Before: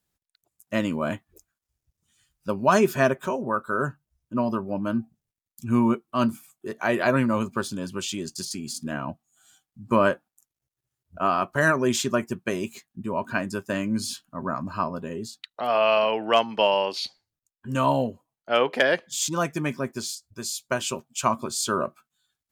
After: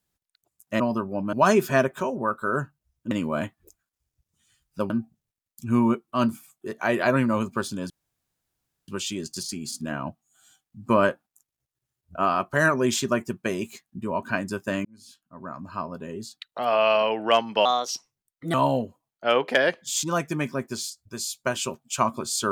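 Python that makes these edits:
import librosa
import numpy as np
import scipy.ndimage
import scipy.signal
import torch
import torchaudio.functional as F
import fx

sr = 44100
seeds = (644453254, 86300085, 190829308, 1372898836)

y = fx.edit(x, sr, fx.swap(start_s=0.8, length_s=1.79, other_s=4.37, other_length_s=0.53),
    fx.insert_room_tone(at_s=7.9, length_s=0.98),
    fx.fade_in_span(start_s=13.87, length_s=1.66),
    fx.speed_span(start_s=16.67, length_s=1.12, speed=1.26), tone=tone)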